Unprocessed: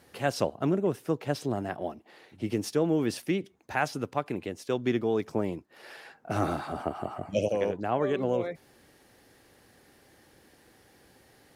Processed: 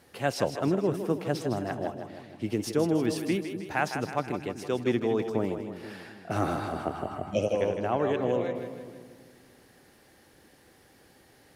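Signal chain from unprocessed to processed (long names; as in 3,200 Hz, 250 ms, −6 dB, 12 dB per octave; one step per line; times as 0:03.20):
echo with a time of its own for lows and highs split 330 Hz, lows 243 ms, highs 158 ms, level −8 dB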